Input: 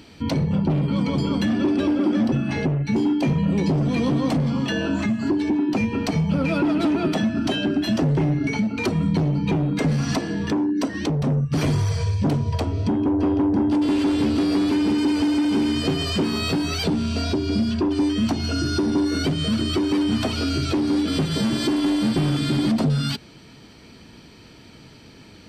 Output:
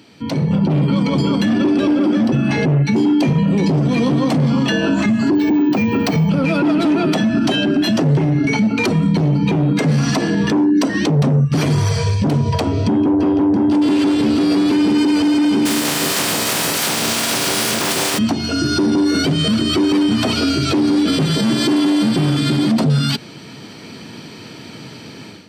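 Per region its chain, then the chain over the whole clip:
5.35–6.29 high shelf 6700 Hz -6 dB + careless resampling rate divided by 2×, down filtered, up hold
15.65–18.17 spectral contrast lowered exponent 0.23 + echo with dull and thin repeats by turns 0.149 s, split 820 Hz, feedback 53%, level -2.5 dB
whole clip: AGC gain up to 12 dB; HPF 110 Hz 24 dB/oct; limiter -8.5 dBFS

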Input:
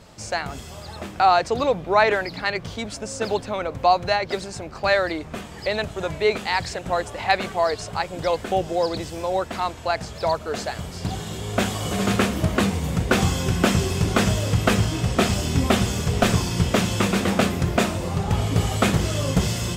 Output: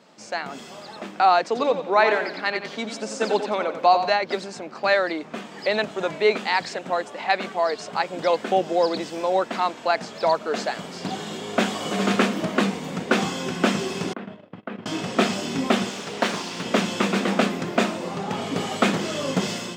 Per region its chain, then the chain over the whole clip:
1.45–4.1 HPF 170 Hz + feedback echo 90 ms, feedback 41%, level -9 dB
14.13–14.86 gate -21 dBFS, range -37 dB + compressor 16:1, threshold -28 dBFS + air absorption 490 m
15.89–16.65 low shelf 320 Hz -9 dB + Doppler distortion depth 0.58 ms
whole clip: Chebyshev high-pass 210 Hz, order 3; AGC gain up to 7 dB; bell 12000 Hz -14.5 dB 0.96 oct; gain -3.5 dB

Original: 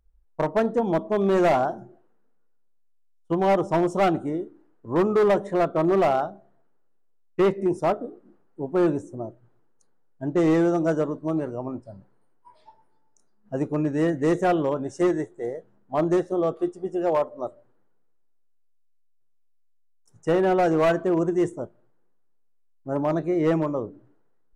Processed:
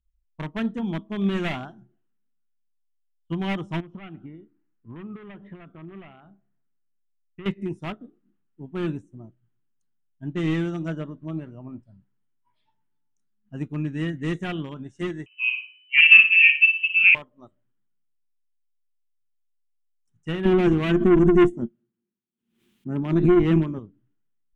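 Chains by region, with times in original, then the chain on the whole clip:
3.8–7.46 LPF 2800 Hz 24 dB/oct + compressor, threshold -28 dBFS
10.88–11.84 LPF 3500 Hz 6 dB/oct + bell 600 Hz +6.5 dB 0.3 oct + upward compressor, threshold -27 dBFS
15.26–17.15 flutter echo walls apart 9.8 m, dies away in 0.55 s + inverted band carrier 3000 Hz
20.45–23.79 small resonant body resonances 230/350 Hz, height 17 dB, ringing for 75 ms + tube stage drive 7 dB, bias 0.4 + backwards sustainer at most 97 dB/s
whole clip: EQ curve 220 Hz 0 dB, 550 Hz -19 dB, 3200 Hz +5 dB, 4700 Hz -9 dB; upward expander 1.5:1, over -50 dBFS; gain +7.5 dB

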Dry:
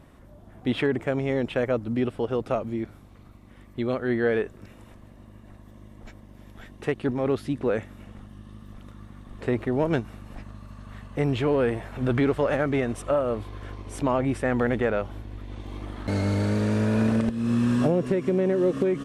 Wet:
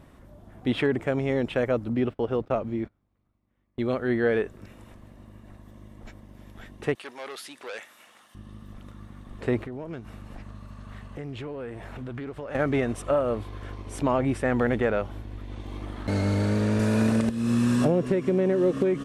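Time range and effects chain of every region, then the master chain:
1.89–3.81 median filter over 5 samples + gate -39 dBFS, range -24 dB + high shelf 5600 Hz -9 dB
6.95–8.35 HPF 840 Hz + high shelf 2900 Hz +8.5 dB + core saturation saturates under 2700 Hz
9.63–12.55 compressor 4:1, threshold -35 dBFS + Doppler distortion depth 0.14 ms
16.79–17.85 HPF 63 Hz + high shelf 4600 Hz +9 dB + notch 3200 Hz, Q 23
whole clip: dry

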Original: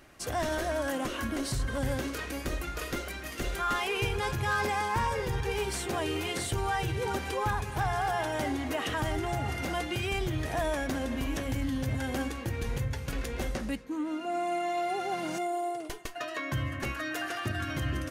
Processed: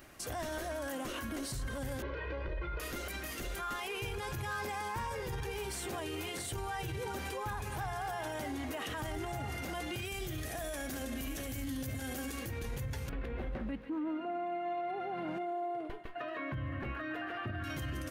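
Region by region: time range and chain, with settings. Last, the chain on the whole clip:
2.02–2.8 Gaussian blur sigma 3.2 samples + comb 2 ms, depth 97%
10.05–12.48 high shelf 4800 Hz +9 dB + notch 950 Hz, Q 5.3 + echo 72 ms -11.5 dB
13.09–17.64 air absorption 500 m + thinning echo 0.142 s, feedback 71%, high-pass 1200 Hz, level -12 dB
whole clip: high shelf 12000 Hz +11 dB; limiter -31 dBFS

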